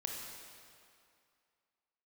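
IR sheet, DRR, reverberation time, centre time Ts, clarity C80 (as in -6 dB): 0.0 dB, 2.4 s, 96 ms, 2.5 dB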